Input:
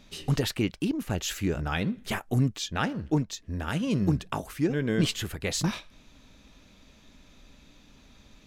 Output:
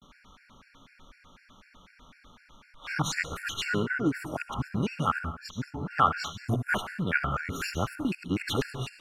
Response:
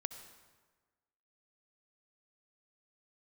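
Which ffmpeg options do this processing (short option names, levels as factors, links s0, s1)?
-filter_complex "[0:a]areverse,equalizer=f=1400:w=1.1:g=14,asetrate=41454,aresample=44100[s0];[1:a]atrim=start_sample=2205,afade=t=out:st=0.3:d=0.01,atrim=end_sample=13671[s1];[s0][s1]afir=irnorm=-1:irlink=0,afftfilt=real='re*gt(sin(2*PI*4*pts/sr)*(1-2*mod(floor(b*sr/1024/1400),2)),0)':imag='im*gt(sin(2*PI*4*pts/sr)*(1-2*mod(floor(b*sr/1024/1400),2)),0)':win_size=1024:overlap=0.75"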